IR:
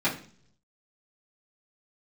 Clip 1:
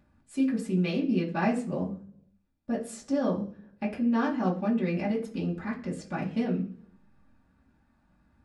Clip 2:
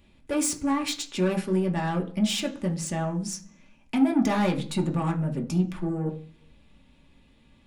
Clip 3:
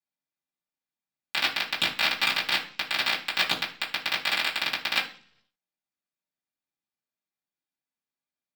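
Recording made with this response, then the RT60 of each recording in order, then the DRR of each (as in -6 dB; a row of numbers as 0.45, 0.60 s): 3; 0.50, 0.50, 0.50 s; -7.0, 1.0, -11.5 dB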